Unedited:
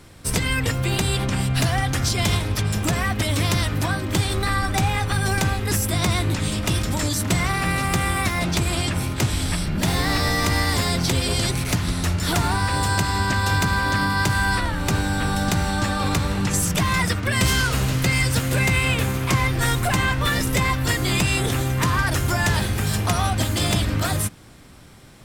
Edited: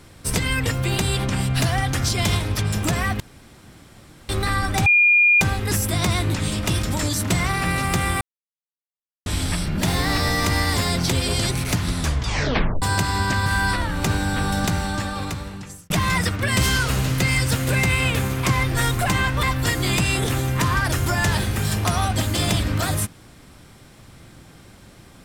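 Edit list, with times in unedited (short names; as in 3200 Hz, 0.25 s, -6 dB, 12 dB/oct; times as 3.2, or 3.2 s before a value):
3.2–4.29 room tone
4.86–5.41 bleep 2420 Hz -11.5 dBFS
8.21–9.26 mute
11.98 tape stop 0.84 s
13.46–14.3 cut
15.44–16.74 fade out
20.27–20.65 cut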